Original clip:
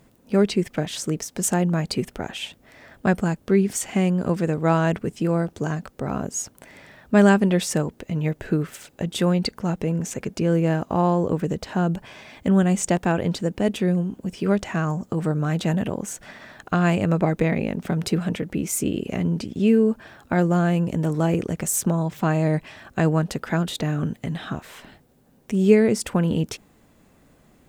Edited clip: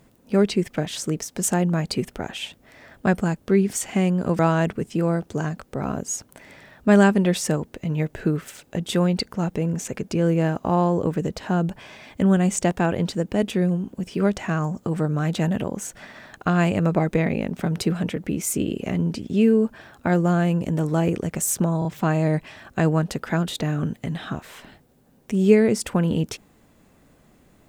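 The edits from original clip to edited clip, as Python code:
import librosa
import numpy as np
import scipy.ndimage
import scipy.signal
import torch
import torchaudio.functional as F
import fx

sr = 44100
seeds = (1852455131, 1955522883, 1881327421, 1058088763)

y = fx.edit(x, sr, fx.cut(start_s=4.39, length_s=0.26),
    fx.stutter(start_s=22.05, slice_s=0.03, count=3), tone=tone)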